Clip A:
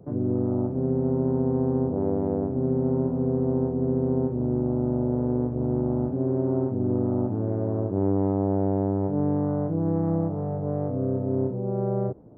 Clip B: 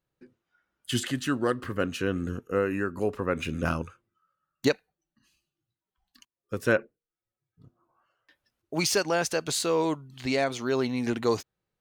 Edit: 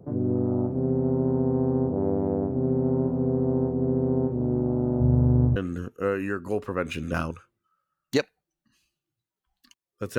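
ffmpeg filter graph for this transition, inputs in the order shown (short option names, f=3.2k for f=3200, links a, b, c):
-filter_complex "[0:a]asplit=3[a][b][c];[a]afade=t=out:st=5:d=0.02[d];[b]asubboost=boost=6.5:cutoff=140,afade=t=in:st=5:d=0.02,afade=t=out:st=5.56:d=0.02[e];[c]afade=t=in:st=5.56:d=0.02[f];[d][e][f]amix=inputs=3:normalize=0,apad=whole_dur=10.18,atrim=end=10.18,atrim=end=5.562[g];[1:a]atrim=start=2.068:end=6.69[h];[g][h]acrossfade=d=0.004:c1=hsin:c2=hsin"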